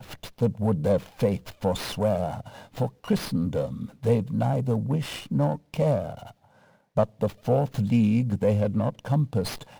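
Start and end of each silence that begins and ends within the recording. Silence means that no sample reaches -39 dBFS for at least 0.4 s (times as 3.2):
6.31–6.96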